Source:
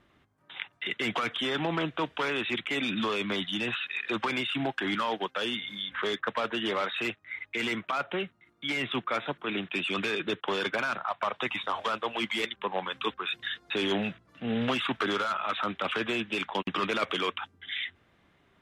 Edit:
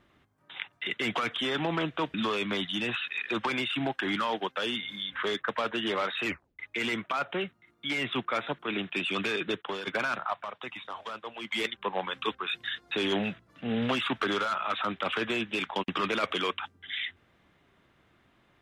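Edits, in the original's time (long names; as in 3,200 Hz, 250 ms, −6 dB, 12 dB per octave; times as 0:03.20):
0:02.14–0:02.93: remove
0:07.05: tape stop 0.33 s
0:10.28–0:10.66: fade out, to −10 dB
0:11.21–0:12.31: clip gain −8.5 dB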